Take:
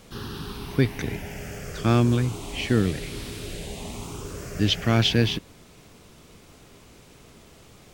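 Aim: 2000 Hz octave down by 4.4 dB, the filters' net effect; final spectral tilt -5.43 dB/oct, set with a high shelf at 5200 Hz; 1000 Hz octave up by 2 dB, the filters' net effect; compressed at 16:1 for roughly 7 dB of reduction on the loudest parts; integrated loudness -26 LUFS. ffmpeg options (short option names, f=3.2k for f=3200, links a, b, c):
-af "equalizer=f=1k:t=o:g=5,equalizer=f=2k:t=o:g=-7,highshelf=f=5.2k:g=-3,acompressor=threshold=-21dB:ratio=16,volume=5dB"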